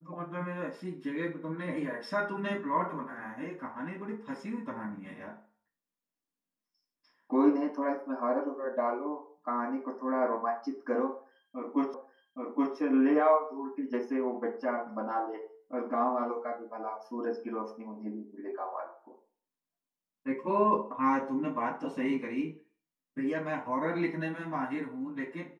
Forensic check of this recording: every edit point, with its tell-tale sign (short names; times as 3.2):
11.94 repeat of the last 0.82 s